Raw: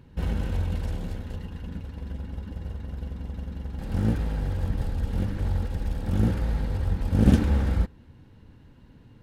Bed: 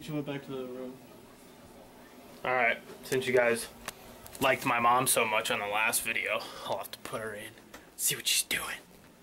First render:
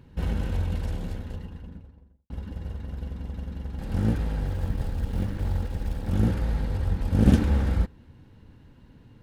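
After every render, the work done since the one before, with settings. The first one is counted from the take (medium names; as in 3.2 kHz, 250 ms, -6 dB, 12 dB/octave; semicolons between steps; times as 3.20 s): 1.11–2.30 s: studio fade out; 4.46–6.10 s: companding laws mixed up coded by A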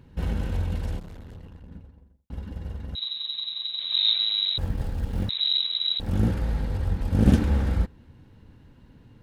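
0.99–1.71 s: valve stage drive 38 dB, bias 0.75; 2.95–4.58 s: frequency inversion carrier 3.9 kHz; 5.29–6.00 s: frequency inversion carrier 3.9 kHz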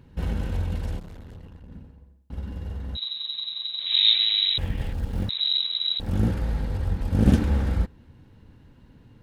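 1.63–2.97 s: flutter echo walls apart 10.3 m, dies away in 0.56 s; 3.86–4.93 s: high-order bell 2.5 kHz +9.5 dB 1.1 oct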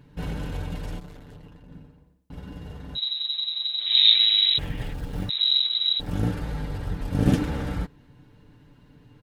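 bass shelf 150 Hz -4 dB; comb 6.8 ms, depth 60%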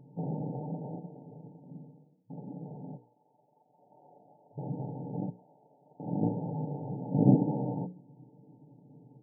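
hum notches 60/120/180/240/300/360/420/480/540 Hz; FFT band-pass 110–920 Hz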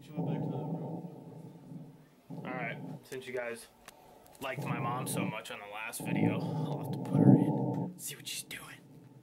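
add bed -12.5 dB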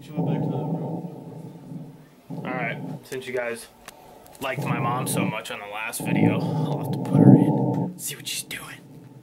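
trim +10 dB; peak limiter -1 dBFS, peak gain reduction 2 dB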